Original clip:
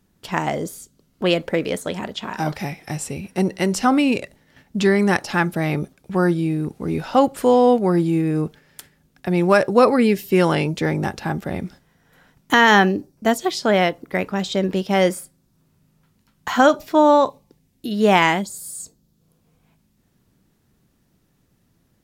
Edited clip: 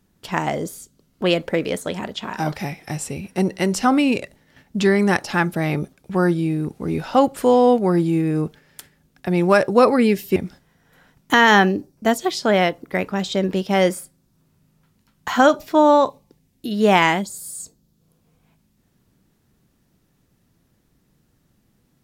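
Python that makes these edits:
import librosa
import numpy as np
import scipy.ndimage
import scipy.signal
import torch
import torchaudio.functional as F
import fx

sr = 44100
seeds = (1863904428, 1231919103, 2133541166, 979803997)

y = fx.edit(x, sr, fx.cut(start_s=10.36, length_s=1.2), tone=tone)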